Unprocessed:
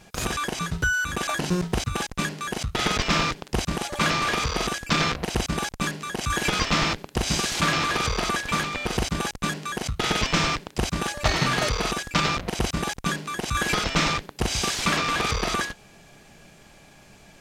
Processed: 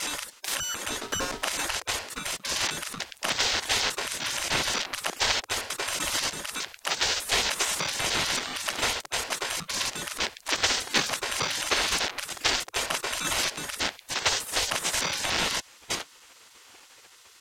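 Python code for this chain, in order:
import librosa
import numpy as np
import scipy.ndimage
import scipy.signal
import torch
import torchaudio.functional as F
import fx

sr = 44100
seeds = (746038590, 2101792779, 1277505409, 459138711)

y = fx.block_reorder(x, sr, ms=300.0, group=2)
y = fx.spec_gate(y, sr, threshold_db=-15, keep='weak')
y = y * 10.0 ** (4.5 / 20.0)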